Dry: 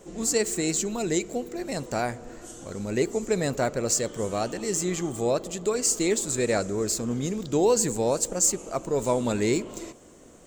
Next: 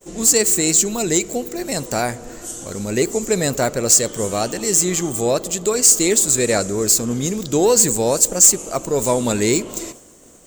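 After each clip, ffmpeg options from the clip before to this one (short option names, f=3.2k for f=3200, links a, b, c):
-af "aemphasis=mode=production:type=50kf,acontrast=89,agate=range=-33dB:threshold=-36dB:ratio=3:detection=peak,volume=-1dB"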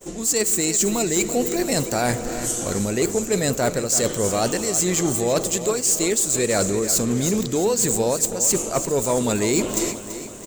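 -af "areverse,acompressor=threshold=-23dB:ratio=16,areverse,asoftclip=type=hard:threshold=-19.5dB,aecho=1:1:334|668|1002|1336|1670|2004:0.251|0.143|0.0816|0.0465|0.0265|0.0151,volume=6dB"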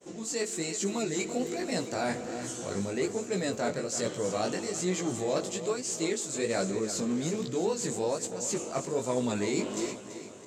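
-af "flanger=delay=15.5:depth=5.9:speed=1.2,highpass=120,lowpass=5.7k,volume=-5.5dB"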